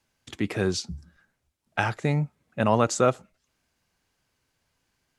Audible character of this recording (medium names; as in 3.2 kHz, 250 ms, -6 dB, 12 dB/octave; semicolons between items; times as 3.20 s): noise floor -77 dBFS; spectral tilt -5.5 dB/octave